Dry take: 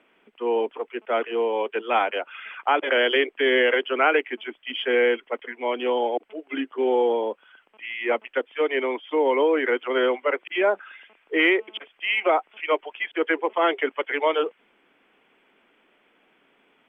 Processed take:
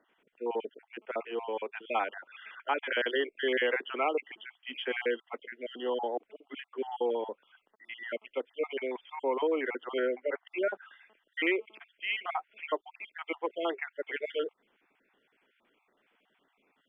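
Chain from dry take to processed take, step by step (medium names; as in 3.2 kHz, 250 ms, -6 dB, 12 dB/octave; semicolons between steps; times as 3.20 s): random holes in the spectrogram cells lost 38%; 9.99–10.47 s: low-pass 2.2 kHz 24 dB/octave; trim -8 dB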